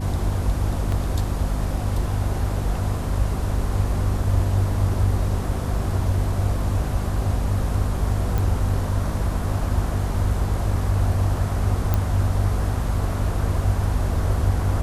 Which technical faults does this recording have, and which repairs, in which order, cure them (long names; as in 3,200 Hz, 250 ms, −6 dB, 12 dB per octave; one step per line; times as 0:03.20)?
mains hum 50 Hz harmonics 5 −26 dBFS
0:00.92: drop-out 2.5 ms
0:08.38: click
0:11.94: click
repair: click removal
hum removal 50 Hz, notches 5
repair the gap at 0:00.92, 2.5 ms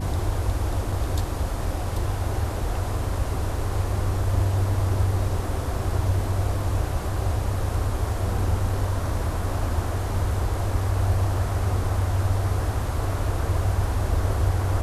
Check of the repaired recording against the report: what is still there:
none of them is left